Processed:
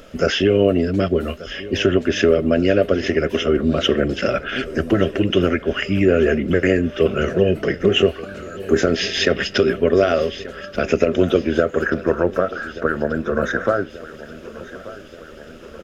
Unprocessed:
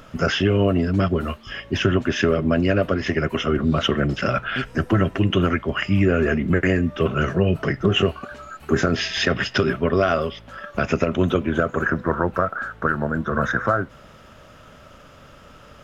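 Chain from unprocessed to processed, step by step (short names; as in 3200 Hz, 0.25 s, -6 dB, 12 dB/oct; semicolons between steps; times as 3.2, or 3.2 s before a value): ten-band EQ 125 Hz -11 dB, 500 Hz +6 dB, 1000 Hz -11 dB; feedback echo 1.183 s, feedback 60%, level -17 dB; gain +3.5 dB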